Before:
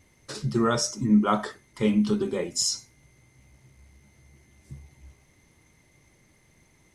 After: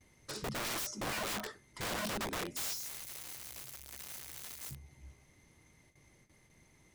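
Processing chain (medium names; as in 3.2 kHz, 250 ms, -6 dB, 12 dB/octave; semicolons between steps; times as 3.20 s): 2.59–4.75 s: zero-crossing glitches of -22.5 dBFS; gate with hold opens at -51 dBFS; in parallel at -2 dB: compression 12:1, threshold -37 dBFS, peak gain reduction 22 dB; on the sum: integer overflow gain 23.5 dB; trim -9 dB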